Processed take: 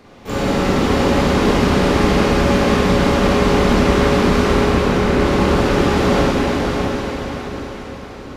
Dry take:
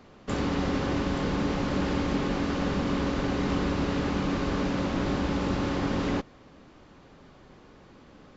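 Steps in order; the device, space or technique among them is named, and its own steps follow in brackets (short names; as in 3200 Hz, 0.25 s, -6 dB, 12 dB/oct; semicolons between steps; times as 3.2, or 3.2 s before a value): 4.53–5.19 air absorption 420 m; shimmer-style reverb (harmoniser +12 st -9 dB; reverb RT60 3.7 s, pre-delay 21 ms, DRR -6.5 dB); diffused feedback echo 0.598 s, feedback 43%, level -4.5 dB; gain +5 dB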